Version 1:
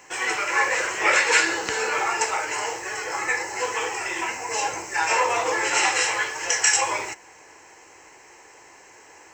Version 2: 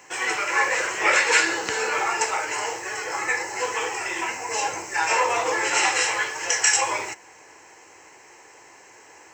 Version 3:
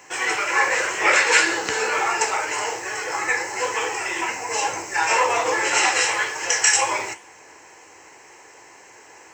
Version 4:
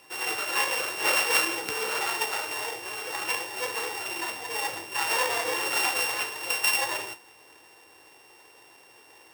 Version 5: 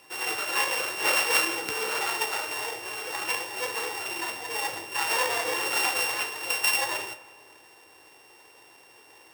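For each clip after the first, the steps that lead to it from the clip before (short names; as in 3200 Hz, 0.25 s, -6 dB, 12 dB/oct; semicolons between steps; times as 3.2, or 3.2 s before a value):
HPF 71 Hz
flange 1.9 Hz, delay 9.5 ms, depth 8.8 ms, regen -72%; gain +6.5 dB
sample sorter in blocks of 16 samples; gain -7 dB
reverb RT60 1.8 s, pre-delay 90 ms, DRR 17 dB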